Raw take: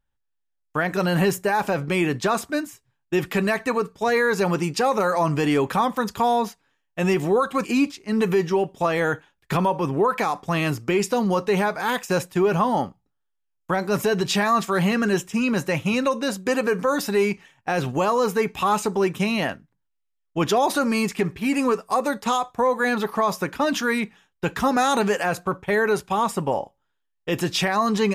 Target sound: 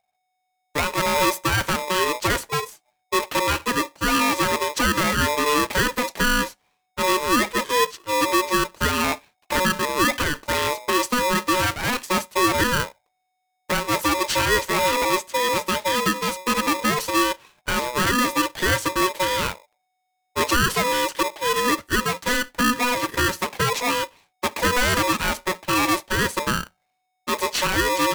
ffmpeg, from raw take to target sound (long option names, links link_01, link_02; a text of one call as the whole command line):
ffmpeg -i in.wav -af "aeval=exprs='val(0)*sgn(sin(2*PI*740*n/s))':channel_layout=same" out.wav